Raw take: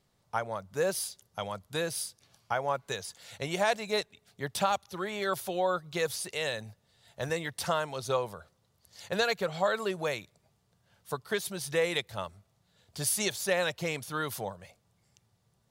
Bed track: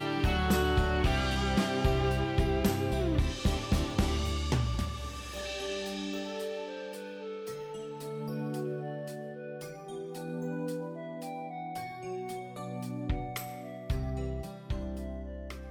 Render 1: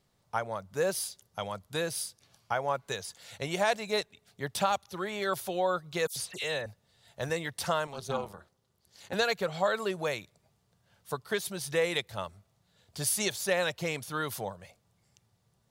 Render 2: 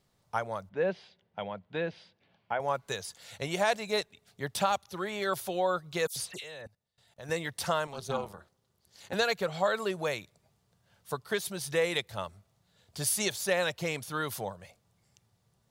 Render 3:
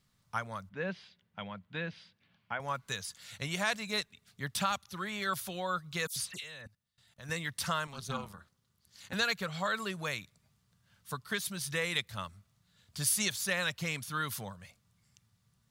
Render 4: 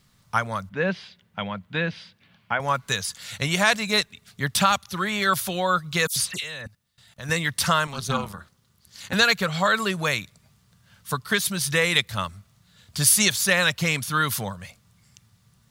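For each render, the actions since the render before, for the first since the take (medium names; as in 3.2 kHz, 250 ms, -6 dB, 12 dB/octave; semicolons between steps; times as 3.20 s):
6.07–6.66 s: phase dispersion lows, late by 90 ms, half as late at 2.6 kHz; 7.87–9.14 s: AM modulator 280 Hz, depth 80%
0.69–2.60 s: cabinet simulation 110–3000 Hz, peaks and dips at 130 Hz -9 dB, 180 Hz +5 dB, 1.2 kHz -8 dB; 6.40–7.29 s: level held to a coarse grid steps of 22 dB
high-order bell 530 Hz -10 dB
trim +12 dB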